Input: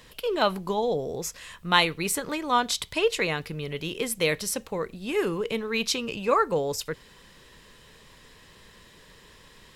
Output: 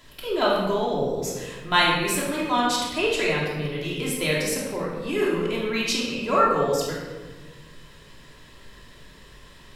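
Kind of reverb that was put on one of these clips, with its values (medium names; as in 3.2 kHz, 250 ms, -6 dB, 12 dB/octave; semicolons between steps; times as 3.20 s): simulated room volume 1000 m³, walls mixed, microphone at 3 m; trim -3.5 dB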